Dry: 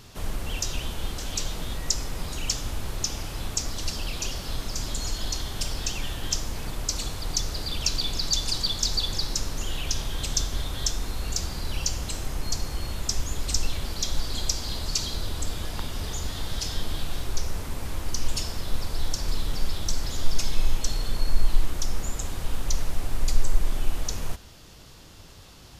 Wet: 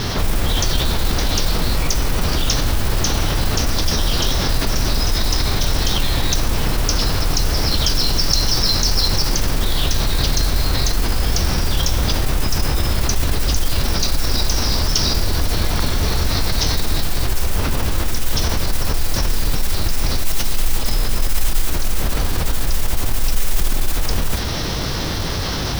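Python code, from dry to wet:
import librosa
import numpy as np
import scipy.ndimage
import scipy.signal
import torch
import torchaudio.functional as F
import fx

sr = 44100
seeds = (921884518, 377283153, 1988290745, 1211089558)

y = scipy.signal.sosfilt(scipy.signal.butter(12, 5000.0, 'lowpass', fs=sr, output='sos'), x)
y = fx.formant_shift(y, sr, semitones=3)
y = fx.mod_noise(y, sr, seeds[0], snr_db=16)
y = fx.env_flatten(y, sr, amount_pct=70)
y = y * librosa.db_to_amplitude(-1.5)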